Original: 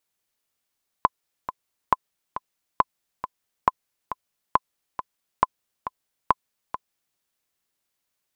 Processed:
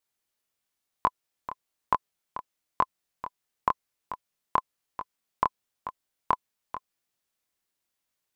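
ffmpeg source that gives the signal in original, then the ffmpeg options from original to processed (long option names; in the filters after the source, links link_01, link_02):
-f lavfi -i "aevalsrc='pow(10,(-3-12*gte(mod(t,2*60/137),60/137))/20)*sin(2*PI*1020*mod(t,60/137))*exp(-6.91*mod(t,60/137)/0.03)':duration=6.13:sample_rate=44100"
-af "flanger=delay=19.5:depth=7.7:speed=1"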